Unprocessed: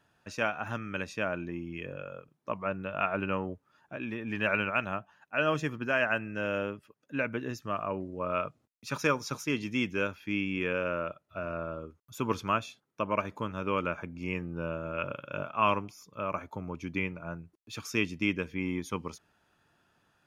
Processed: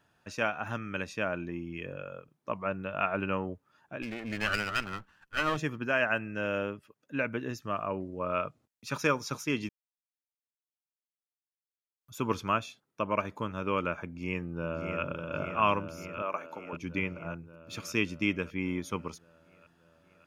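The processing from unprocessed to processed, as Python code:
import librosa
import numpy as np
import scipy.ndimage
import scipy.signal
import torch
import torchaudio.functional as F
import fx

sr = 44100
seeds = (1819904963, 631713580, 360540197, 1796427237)

y = fx.lower_of_two(x, sr, delay_ms=0.68, at=(4.02, 5.57))
y = fx.echo_throw(y, sr, start_s=14.05, length_s=0.97, ms=580, feedback_pct=70, wet_db=-5.5)
y = fx.highpass(y, sr, hz=360.0, slope=12, at=(16.22, 16.73))
y = fx.edit(y, sr, fx.silence(start_s=9.69, length_s=2.32), tone=tone)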